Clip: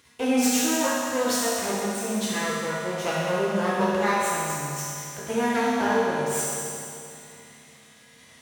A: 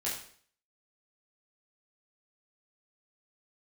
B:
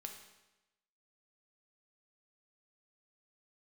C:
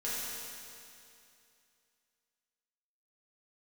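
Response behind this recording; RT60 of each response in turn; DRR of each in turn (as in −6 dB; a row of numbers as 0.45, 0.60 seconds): C; 0.55, 1.0, 2.6 seconds; −7.5, 3.0, −9.5 decibels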